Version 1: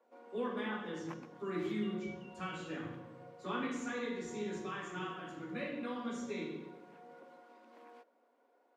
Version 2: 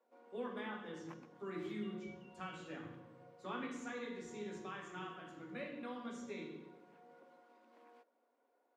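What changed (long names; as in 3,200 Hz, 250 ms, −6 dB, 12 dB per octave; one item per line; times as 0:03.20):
speech: send −6.5 dB
background −6.5 dB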